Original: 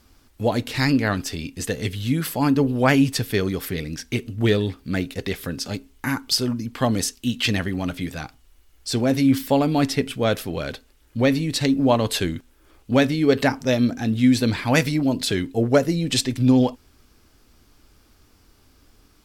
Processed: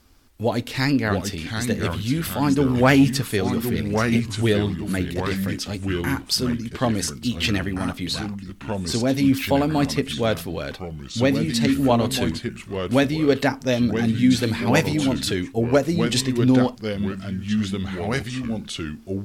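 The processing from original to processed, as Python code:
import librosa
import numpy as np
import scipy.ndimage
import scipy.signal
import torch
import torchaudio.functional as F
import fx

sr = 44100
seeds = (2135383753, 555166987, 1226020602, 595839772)

y = fx.leveller(x, sr, passes=1, at=(2.65, 3.12))
y = fx.lowpass(y, sr, hz=11000.0, slope=12, at=(6.5, 7.08))
y = fx.echo_pitch(y, sr, ms=582, semitones=-3, count=2, db_per_echo=-6.0)
y = y * librosa.db_to_amplitude(-1.0)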